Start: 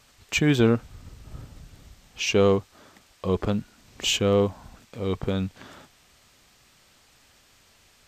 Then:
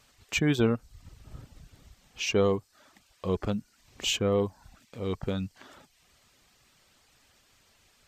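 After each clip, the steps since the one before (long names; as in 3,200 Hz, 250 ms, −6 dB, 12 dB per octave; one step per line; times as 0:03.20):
reverb reduction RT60 0.53 s
level −4 dB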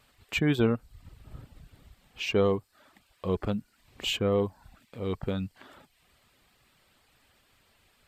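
parametric band 6,100 Hz −11 dB 0.61 octaves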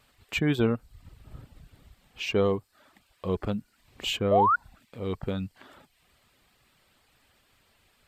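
sound drawn into the spectrogram rise, 0:04.31–0:04.56, 570–1,500 Hz −21 dBFS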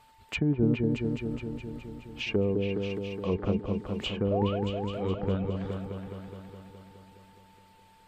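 treble cut that deepens with the level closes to 390 Hz, closed at −22.5 dBFS
echo whose low-pass opens from repeat to repeat 209 ms, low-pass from 750 Hz, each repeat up 2 octaves, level −3 dB
steady tone 890 Hz −58 dBFS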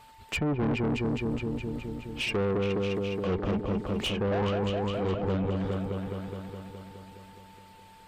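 tube saturation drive 31 dB, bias 0.3
level +6.5 dB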